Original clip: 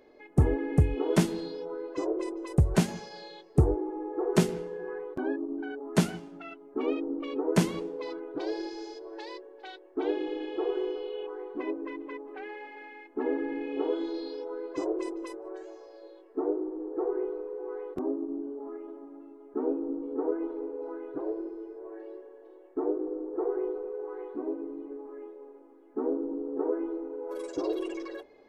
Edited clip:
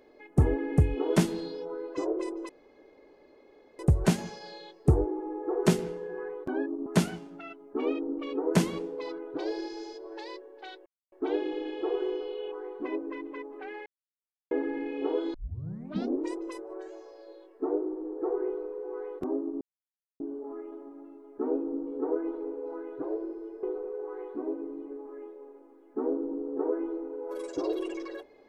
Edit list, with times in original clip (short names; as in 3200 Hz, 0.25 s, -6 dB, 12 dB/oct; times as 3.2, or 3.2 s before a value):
2.49 insert room tone 1.30 s
5.56–5.87 cut
9.87 insert silence 0.26 s
12.61–13.26 mute
14.09 tape start 0.99 s
18.36 insert silence 0.59 s
21.79–23.63 cut